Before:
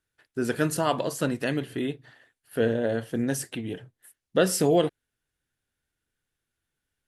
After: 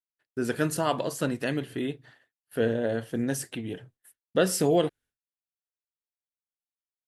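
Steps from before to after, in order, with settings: expander -50 dBFS; gain -1.5 dB

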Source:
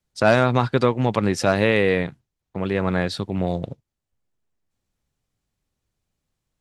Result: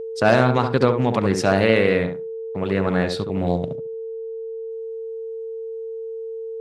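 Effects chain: tape echo 70 ms, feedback 21%, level -4 dB, low-pass 1200 Hz; whine 450 Hz -28 dBFS; Doppler distortion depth 0.16 ms

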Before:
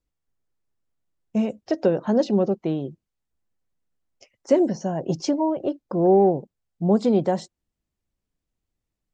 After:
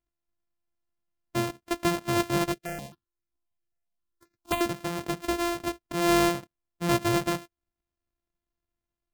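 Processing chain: sample sorter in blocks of 128 samples; 2.52–4.61 step phaser 7.5 Hz 250–3100 Hz; gain -6 dB

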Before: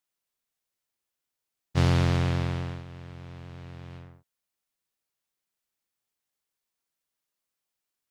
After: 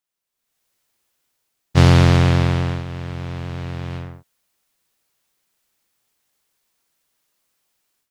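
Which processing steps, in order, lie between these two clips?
AGC gain up to 14.5 dB

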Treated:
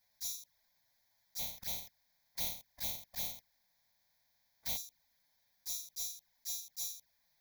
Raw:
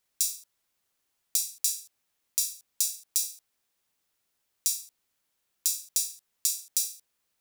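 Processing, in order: 1.38–4.76 spectral contrast lowered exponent 0.1; dynamic EQ 1200 Hz, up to -6 dB, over -54 dBFS, Q 1.4; auto swell 0.204 s; hard clip -33.5 dBFS, distortion -16 dB; envelope flanger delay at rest 10.3 ms, full sweep at -43 dBFS; fixed phaser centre 1900 Hz, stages 8; upward expander 1.5:1, over -56 dBFS; gain +12.5 dB

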